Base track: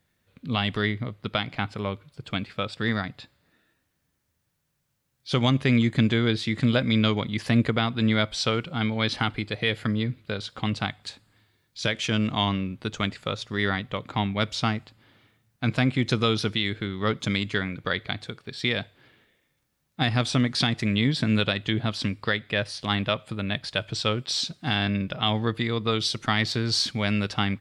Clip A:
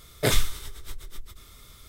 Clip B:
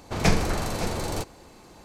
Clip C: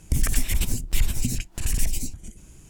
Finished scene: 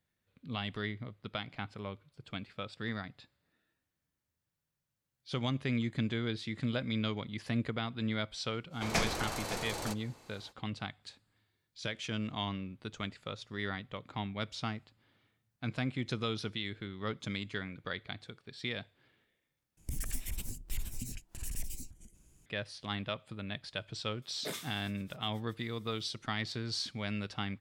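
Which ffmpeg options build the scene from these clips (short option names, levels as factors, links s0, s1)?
-filter_complex "[0:a]volume=0.251[s0];[2:a]lowshelf=f=390:g=-10.5[s1];[3:a]highshelf=f=11000:g=7.5[s2];[1:a]highpass=f=170:w=0.5412,highpass=f=170:w=1.3066[s3];[s0]asplit=2[s4][s5];[s4]atrim=end=19.774[s6];[s2]atrim=end=2.69,asetpts=PTS-STARTPTS,volume=0.158[s7];[s5]atrim=start=22.456[s8];[s1]atrim=end=1.84,asetpts=PTS-STARTPTS,volume=0.531,afade=t=in:d=0.05,afade=t=out:st=1.79:d=0.05,adelay=8700[s9];[s3]atrim=end=1.88,asetpts=PTS-STARTPTS,volume=0.158,afade=t=in:d=0.004:c=hsin,afade=t=out:st=1.876:d=0.004:c=hsin,adelay=24220[s10];[s6][s7]acrossfade=d=0.004:c1=hsin:c2=hsin[s11];[s11][s8]acrossfade=d=0.004:c1=hsin:c2=hsin[s12];[s12][s9][s10]amix=inputs=3:normalize=0"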